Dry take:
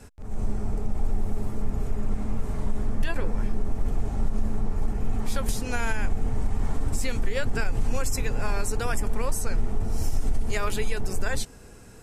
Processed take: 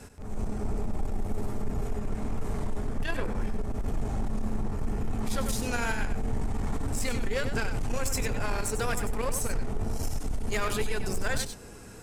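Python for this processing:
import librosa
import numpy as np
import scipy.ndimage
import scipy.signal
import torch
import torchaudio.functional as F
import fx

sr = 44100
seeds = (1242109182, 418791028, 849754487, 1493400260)

y = fx.low_shelf(x, sr, hz=68.0, db=-7.0)
y = 10.0 ** (-25.0 / 20.0) * np.tanh(y / 10.0 ** (-25.0 / 20.0))
y = y + 10.0 ** (-9.0 / 20.0) * np.pad(y, (int(96 * sr / 1000.0), 0))[:len(y)]
y = y * 10.0 ** (2.5 / 20.0)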